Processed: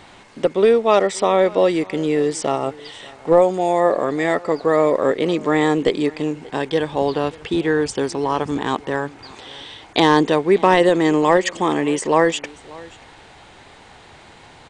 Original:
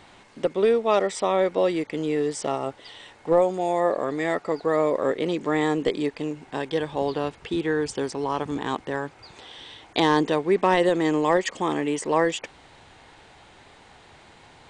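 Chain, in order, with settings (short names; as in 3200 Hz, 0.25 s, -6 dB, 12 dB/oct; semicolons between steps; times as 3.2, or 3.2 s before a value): echo 0.584 s -22 dB; gain +6 dB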